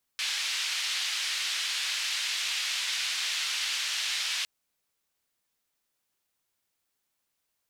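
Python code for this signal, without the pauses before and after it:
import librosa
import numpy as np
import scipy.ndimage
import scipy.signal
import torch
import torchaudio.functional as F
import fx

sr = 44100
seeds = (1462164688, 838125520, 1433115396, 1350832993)

y = fx.band_noise(sr, seeds[0], length_s=4.26, low_hz=2700.0, high_hz=3600.0, level_db=-31.0)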